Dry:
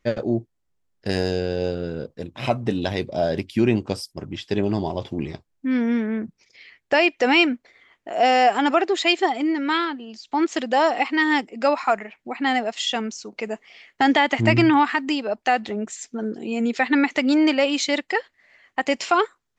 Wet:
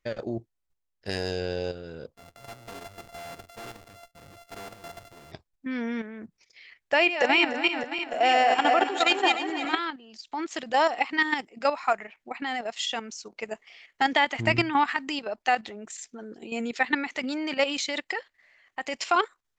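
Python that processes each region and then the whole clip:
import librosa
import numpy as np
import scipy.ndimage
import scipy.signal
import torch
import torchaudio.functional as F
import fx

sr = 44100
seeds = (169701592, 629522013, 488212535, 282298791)

y = fx.chain(x, sr, fx.sample_sort(block=64),
    fx.tube_stage(drive_db=35.0, bias=0.4), at=(2.14, 5.32))
y = fx.chain(y, sr, fx.reverse_delay_fb(ms=151, feedback_pct=71, wet_db=-4.0),
    fx.peak_eq(hz=5100.0, db=-9.5, octaves=0.22), at=(6.93, 9.79))
y = fx.peak_eq(y, sr, hz=200.0, db=-7.5, octaves=2.7)
y = fx.level_steps(y, sr, step_db=10)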